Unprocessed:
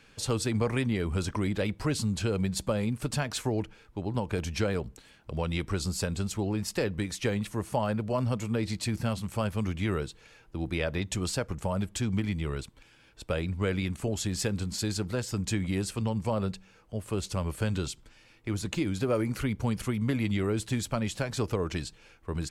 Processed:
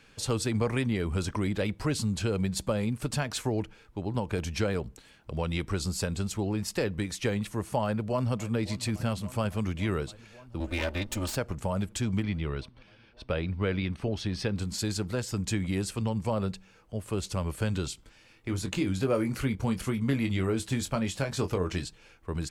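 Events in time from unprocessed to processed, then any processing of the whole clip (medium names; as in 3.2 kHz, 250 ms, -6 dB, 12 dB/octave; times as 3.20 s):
7.83–8.52 s: echo throw 560 ms, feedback 80%, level -17.5 dB
10.60–11.36 s: comb filter that takes the minimum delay 3.3 ms
12.23–14.58 s: Savitzky-Golay filter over 15 samples
17.90–21.85 s: doubling 22 ms -8 dB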